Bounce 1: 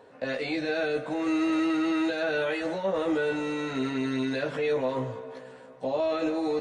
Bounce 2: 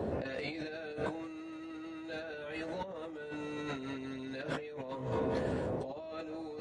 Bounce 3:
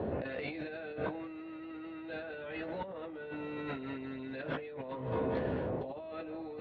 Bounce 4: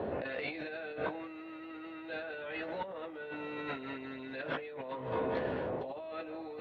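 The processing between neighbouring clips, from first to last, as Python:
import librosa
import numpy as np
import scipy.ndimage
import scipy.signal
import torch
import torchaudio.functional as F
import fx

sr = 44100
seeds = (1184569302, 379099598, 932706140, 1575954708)

y1 = fx.dmg_noise_band(x, sr, seeds[0], low_hz=64.0, high_hz=610.0, level_db=-42.0)
y1 = fx.over_compress(y1, sr, threshold_db=-38.0, ratio=-1.0)
y1 = y1 * librosa.db_to_amplitude(-2.5)
y2 = scipy.signal.sosfilt(scipy.signal.butter(4, 3400.0, 'lowpass', fs=sr, output='sos'), y1)
y3 = fx.low_shelf(y2, sr, hz=330.0, db=-10.5)
y3 = y3 * librosa.db_to_amplitude(3.5)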